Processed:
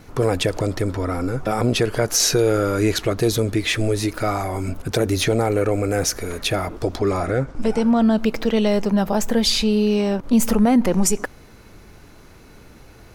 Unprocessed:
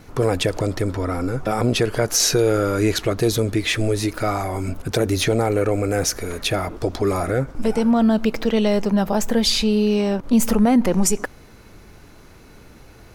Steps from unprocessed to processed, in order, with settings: 6.99–8.16 LPF 6600 Hz -> 11000 Hz 12 dB/oct

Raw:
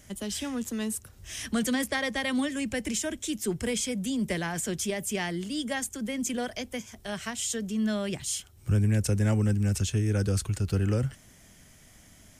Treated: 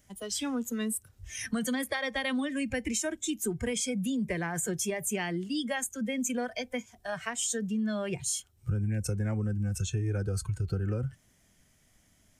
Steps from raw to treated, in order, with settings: spectral noise reduction 14 dB; compressor 5:1, threshold -31 dBFS, peak gain reduction 10 dB; gain +3 dB

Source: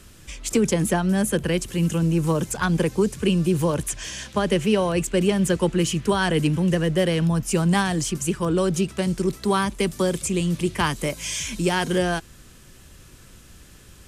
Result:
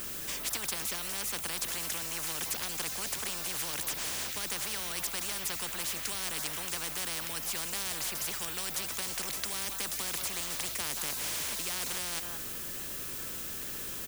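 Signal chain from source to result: added noise violet -48 dBFS; on a send: echo 0.177 s -23.5 dB; on the sum: spectral compressor 10:1; gain -7 dB

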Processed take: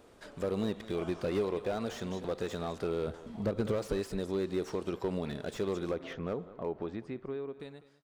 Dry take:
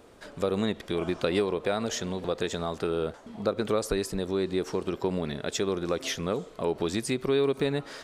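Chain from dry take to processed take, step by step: ending faded out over 1.91 s; 3.07–3.72 low shelf 170 Hz +9.5 dB; 5.91–7.6 LPF 1700 Hz 12 dB/oct; echo 0.2 s -18 dB; slew limiter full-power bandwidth 42 Hz; gain -4.5 dB

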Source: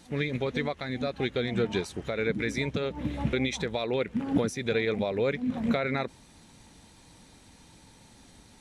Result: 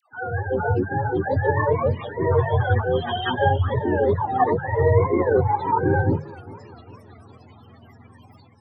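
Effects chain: spectrum mirrored in octaves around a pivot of 460 Hz; dynamic EQ 4600 Hz, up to +4 dB, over -58 dBFS, Q 1.5; loudest bins only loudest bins 32; notches 50/100/150 Hz; dispersion lows, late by 0.132 s, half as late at 690 Hz; AGC gain up to 8 dB; warbling echo 0.399 s, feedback 50%, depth 147 cents, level -20 dB; gain +2.5 dB

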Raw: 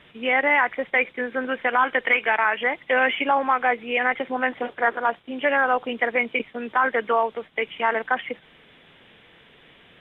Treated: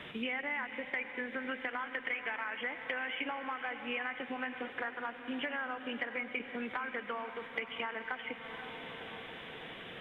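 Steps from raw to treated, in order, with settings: compressor, threshold -33 dBFS, peak gain reduction 17 dB; diffused feedback echo 0.52 s, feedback 57%, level -12.5 dB; on a send at -13 dB: reverb RT60 1.8 s, pre-delay 86 ms; on the sum: dynamic EQ 610 Hz, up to -7 dB, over -49 dBFS, Q 0.89; three-band squash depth 40%

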